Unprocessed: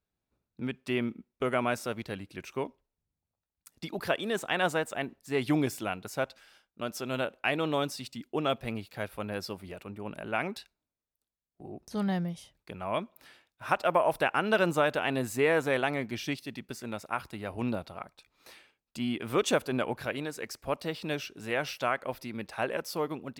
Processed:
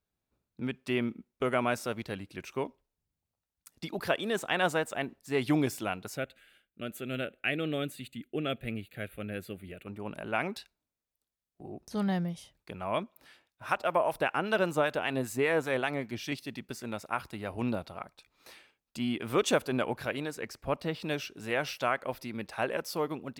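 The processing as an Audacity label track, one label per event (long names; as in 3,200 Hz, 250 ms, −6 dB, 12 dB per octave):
6.170000	9.870000	phaser with its sweep stopped centre 2,300 Hz, stages 4
13.030000	16.320000	two-band tremolo in antiphase 5.1 Hz, depth 50%, crossover 1,000 Hz
20.350000	21.000000	bass and treble bass +4 dB, treble −6 dB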